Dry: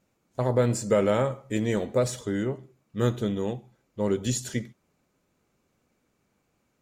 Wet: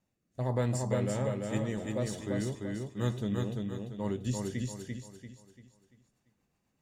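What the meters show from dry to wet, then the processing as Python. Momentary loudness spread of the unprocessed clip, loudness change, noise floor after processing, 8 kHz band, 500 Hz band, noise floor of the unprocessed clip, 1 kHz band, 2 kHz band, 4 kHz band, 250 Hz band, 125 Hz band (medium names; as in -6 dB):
16 LU, -7.0 dB, -79 dBFS, -7.5 dB, -9.0 dB, -73 dBFS, -7.5 dB, -6.5 dB, -7.0 dB, -5.0 dB, -3.0 dB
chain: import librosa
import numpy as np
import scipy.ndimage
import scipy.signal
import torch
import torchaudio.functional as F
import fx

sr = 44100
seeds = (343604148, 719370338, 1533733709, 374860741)

p1 = x + 0.37 * np.pad(x, (int(1.1 * sr / 1000.0), 0))[:len(x)]
p2 = fx.rotary_switch(p1, sr, hz=1.2, then_hz=8.0, switch_at_s=4.76)
p3 = p2 + fx.echo_feedback(p2, sr, ms=342, feedback_pct=39, wet_db=-3, dry=0)
y = p3 * librosa.db_to_amplitude(-6.0)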